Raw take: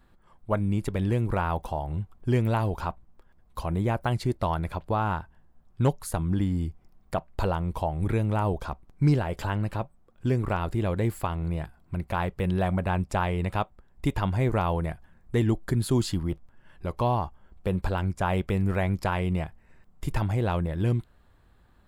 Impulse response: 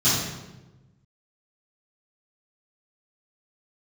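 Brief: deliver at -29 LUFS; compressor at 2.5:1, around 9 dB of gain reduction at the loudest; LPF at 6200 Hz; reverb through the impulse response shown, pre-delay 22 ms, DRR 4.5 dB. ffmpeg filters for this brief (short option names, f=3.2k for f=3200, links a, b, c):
-filter_complex "[0:a]lowpass=6.2k,acompressor=threshold=-32dB:ratio=2.5,asplit=2[a][b];[1:a]atrim=start_sample=2205,adelay=22[c];[b][c]afir=irnorm=-1:irlink=0,volume=-20.5dB[d];[a][d]amix=inputs=2:normalize=0,volume=1dB"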